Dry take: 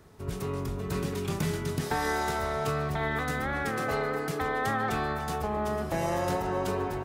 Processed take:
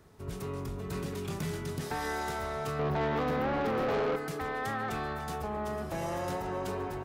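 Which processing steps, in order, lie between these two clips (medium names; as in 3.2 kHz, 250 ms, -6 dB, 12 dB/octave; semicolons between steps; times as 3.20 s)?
2.79–4.16 s: graphic EQ 125/250/500/1000/2000/4000/8000 Hz +6/+9/+11/+9/-5/+5/-12 dB; saturation -23.5 dBFS, distortion -8 dB; trim -3.5 dB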